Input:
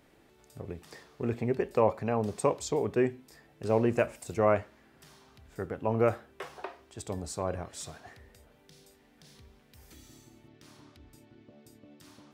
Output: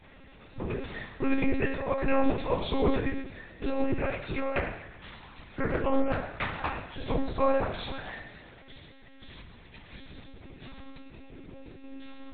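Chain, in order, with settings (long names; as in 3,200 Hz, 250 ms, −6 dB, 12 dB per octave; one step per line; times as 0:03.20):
compressor whose output falls as the input rises −29 dBFS, ratio −0.5
delay with a high-pass on its return 123 ms, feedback 60%, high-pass 2,000 Hz, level −13 dB
convolution reverb RT60 1.0 s, pre-delay 3 ms, DRR −11.5 dB
one-pitch LPC vocoder at 8 kHz 270 Hz
0:04.38–0:06.83: highs frequency-modulated by the lows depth 0.42 ms
level −3 dB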